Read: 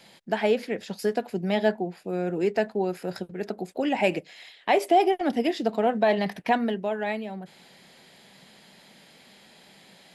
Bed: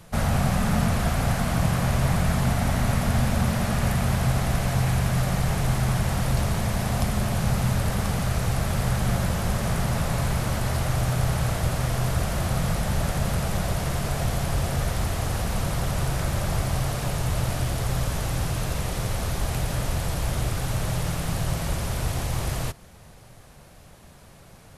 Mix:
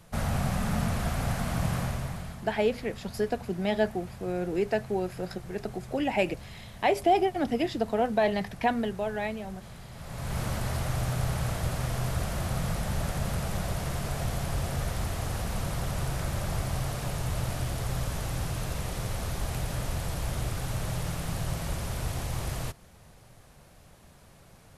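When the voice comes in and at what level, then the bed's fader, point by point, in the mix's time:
2.15 s, −3.0 dB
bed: 0:01.79 −6 dB
0:02.46 −21 dB
0:09.91 −21 dB
0:10.39 −5.5 dB

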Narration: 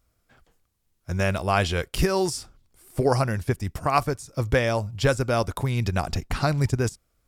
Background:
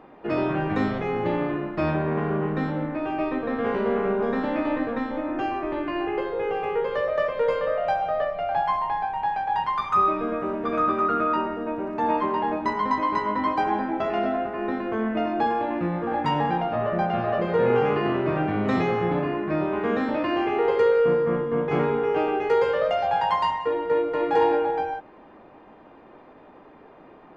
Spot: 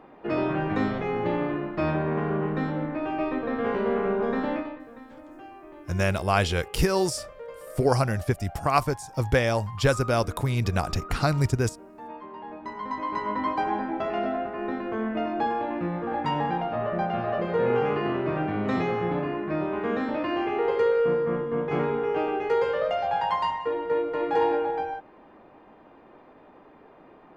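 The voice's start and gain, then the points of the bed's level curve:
4.80 s, −0.5 dB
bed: 0:04.53 −1.5 dB
0:04.80 −17.5 dB
0:12.25 −17.5 dB
0:13.31 −3 dB

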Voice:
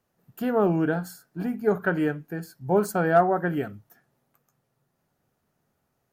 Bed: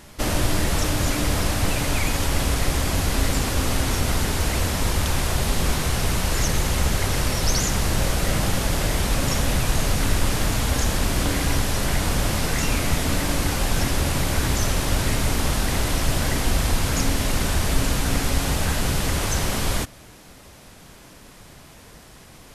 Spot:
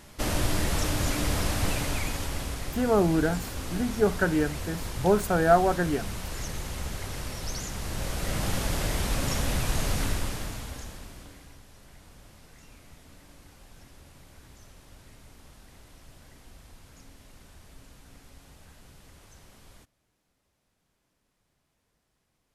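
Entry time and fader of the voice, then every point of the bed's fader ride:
2.35 s, −0.5 dB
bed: 0:01.71 −5 dB
0:02.64 −13 dB
0:07.74 −13 dB
0:08.53 −6 dB
0:10.01 −6 dB
0:11.58 −30 dB

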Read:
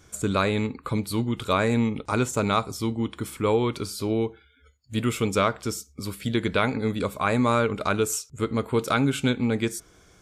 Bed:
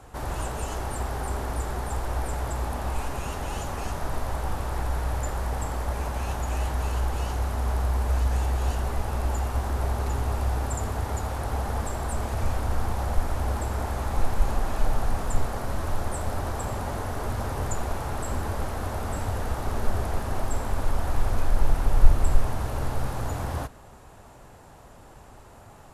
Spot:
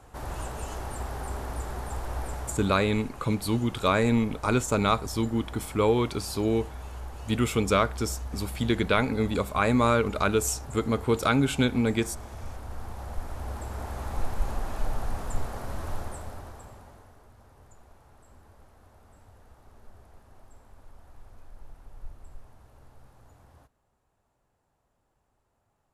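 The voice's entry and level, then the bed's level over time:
2.35 s, −0.5 dB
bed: 0:02.30 −4.5 dB
0:02.92 −12.5 dB
0:12.61 −12.5 dB
0:14.08 −5.5 dB
0:15.96 −5.5 dB
0:17.29 −26 dB

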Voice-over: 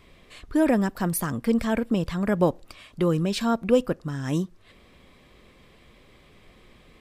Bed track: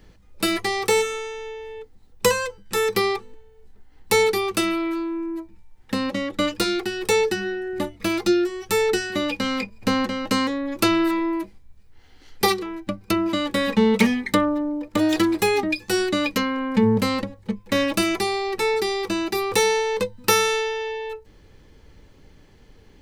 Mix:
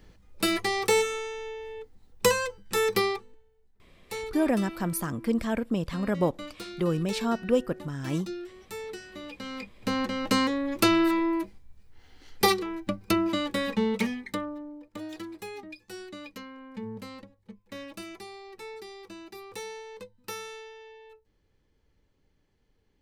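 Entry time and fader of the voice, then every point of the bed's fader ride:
3.80 s, −4.0 dB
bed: 0:02.99 −3.5 dB
0:03.71 −18 dB
0:09.17 −18 dB
0:10.26 −2.5 dB
0:13.11 −2.5 dB
0:15.17 −20 dB

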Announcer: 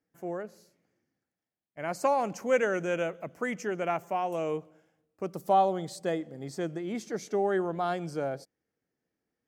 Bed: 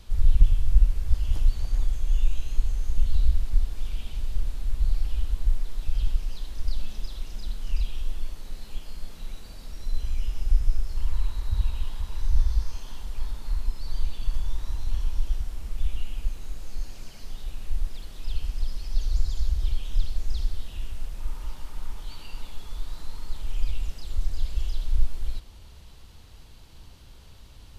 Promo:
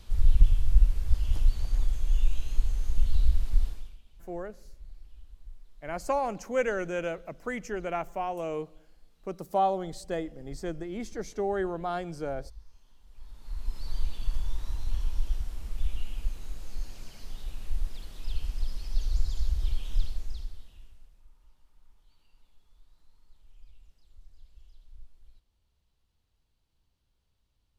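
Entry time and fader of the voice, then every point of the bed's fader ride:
4.05 s, −2.0 dB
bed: 0:03.68 −2 dB
0:04.02 −23.5 dB
0:13.00 −23.5 dB
0:13.77 −3 dB
0:20.03 −3 dB
0:21.28 −27 dB

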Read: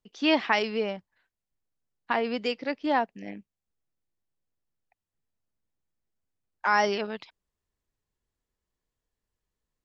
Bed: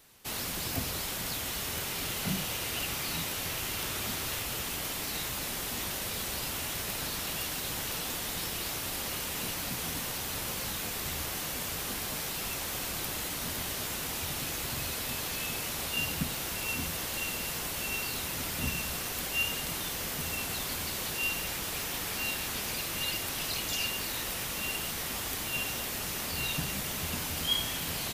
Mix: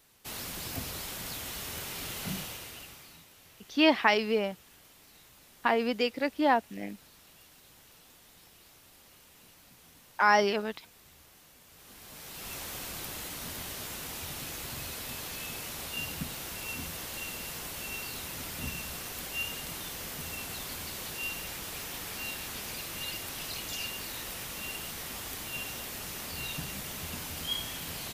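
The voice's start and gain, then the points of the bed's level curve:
3.55 s, +0.5 dB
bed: 0:02.38 −4 dB
0:03.27 −22 dB
0:11.65 −22 dB
0:12.55 −4.5 dB

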